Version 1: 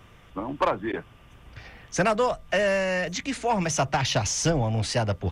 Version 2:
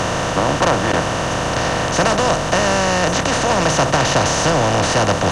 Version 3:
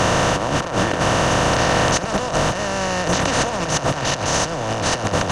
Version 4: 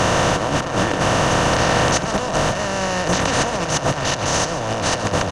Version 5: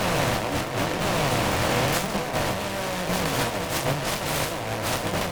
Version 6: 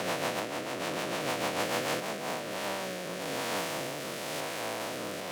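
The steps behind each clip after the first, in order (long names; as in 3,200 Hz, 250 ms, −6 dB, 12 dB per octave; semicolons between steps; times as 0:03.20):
compressor on every frequency bin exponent 0.2
compressor whose output falls as the input rises −19 dBFS, ratio −0.5
slap from a distant wall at 24 metres, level −11 dB
peak hold with a decay on every bin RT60 0.48 s; flanger 0.96 Hz, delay 4.6 ms, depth 6.1 ms, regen +42%; short delay modulated by noise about 1,200 Hz, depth 0.11 ms; level −4 dB
spectrum averaged block by block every 400 ms; rotating-speaker cabinet horn 6.7 Hz, later 1 Hz, at 0:01.81; high-pass filter 250 Hz 12 dB per octave; level −3 dB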